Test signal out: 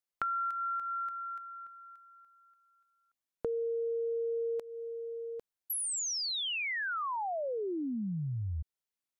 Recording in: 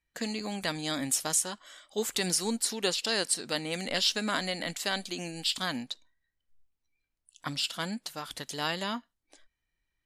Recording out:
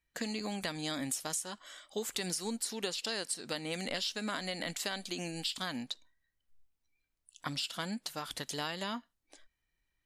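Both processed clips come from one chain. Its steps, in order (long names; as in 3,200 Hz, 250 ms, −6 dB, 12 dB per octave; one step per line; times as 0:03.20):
downward compressor 6 to 1, threshold −33 dBFS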